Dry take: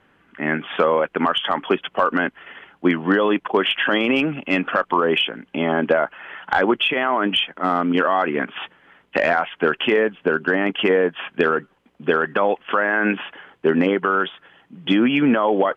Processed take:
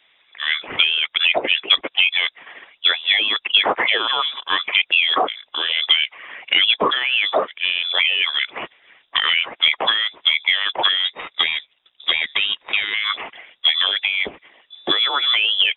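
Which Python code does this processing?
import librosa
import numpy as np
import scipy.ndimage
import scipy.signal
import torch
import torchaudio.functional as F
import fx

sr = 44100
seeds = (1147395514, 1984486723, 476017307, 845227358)

y = fx.halfwave_gain(x, sr, db=-7.0, at=(11.05, 12.94))
y = fx.freq_invert(y, sr, carrier_hz=3700)
y = fx.hpss(y, sr, part='percussive', gain_db=9)
y = y * librosa.db_to_amplitude(-5.5)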